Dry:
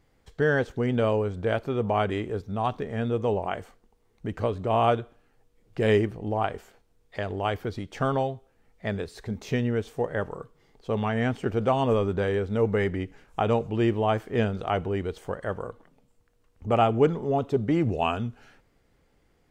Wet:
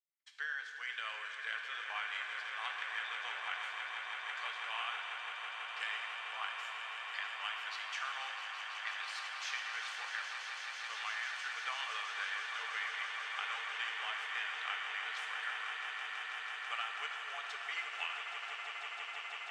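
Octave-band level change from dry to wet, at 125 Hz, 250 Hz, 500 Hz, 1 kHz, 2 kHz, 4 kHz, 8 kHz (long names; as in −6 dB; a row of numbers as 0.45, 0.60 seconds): below −40 dB, below −40 dB, −33.0 dB, −12.5 dB, −0.5 dB, +1.5 dB, can't be measured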